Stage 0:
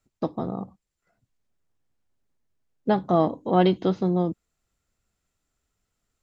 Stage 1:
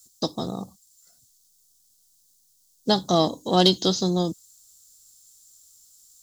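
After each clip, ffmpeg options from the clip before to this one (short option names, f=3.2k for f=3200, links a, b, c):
-af "aeval=exprs='0.501*(cos(1*acos(clip(val(0)/0.501,-1,1)))-cos(1*PI/2))+0.00562*(cos(7*acos(clip(val(0)/0.501,-1,1)))-cos(7*PI/2))':c=same,aexciter=amount=12.1:drive=9.7:freq=3.8k"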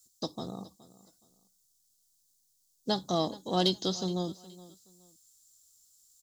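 -af "aecho=1:1:420|840:0.112|0.0292,volume=-9dB"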